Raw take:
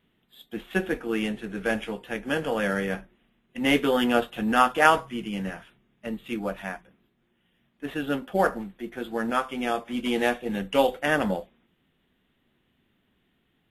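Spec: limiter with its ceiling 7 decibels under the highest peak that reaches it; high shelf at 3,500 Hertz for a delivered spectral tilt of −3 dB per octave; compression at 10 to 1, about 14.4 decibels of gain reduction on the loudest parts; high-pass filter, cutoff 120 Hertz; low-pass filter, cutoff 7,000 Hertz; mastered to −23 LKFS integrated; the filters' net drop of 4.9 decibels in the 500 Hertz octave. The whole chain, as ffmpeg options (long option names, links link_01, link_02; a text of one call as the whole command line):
ffmpeg -i in.wav -af "highpass=120,lowpass=7000,equalizer=frequency=500:width_type=o:gain=-6,highshelf=frequency=3500:gain=7,acompressor=threshold=-28dB:ratio=10,volume=12dB,alimiter=limit=-10dB:level=0:latency=1" out.wav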